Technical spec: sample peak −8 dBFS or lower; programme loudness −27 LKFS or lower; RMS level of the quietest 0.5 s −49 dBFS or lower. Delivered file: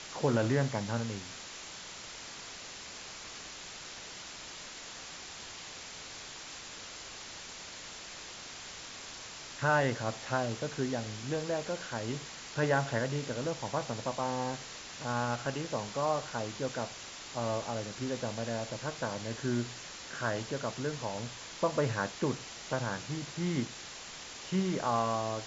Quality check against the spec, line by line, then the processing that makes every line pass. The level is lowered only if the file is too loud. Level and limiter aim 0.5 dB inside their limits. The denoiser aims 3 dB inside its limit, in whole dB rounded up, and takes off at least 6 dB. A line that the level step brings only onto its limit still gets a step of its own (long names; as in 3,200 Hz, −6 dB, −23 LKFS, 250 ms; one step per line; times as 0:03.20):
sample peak −15.5 dBFS: in spec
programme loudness −36.0 LKFS: in spec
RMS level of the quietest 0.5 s −46 dBFS: out of spec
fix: broadband denoise 6 dB, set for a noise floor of −46 dBFS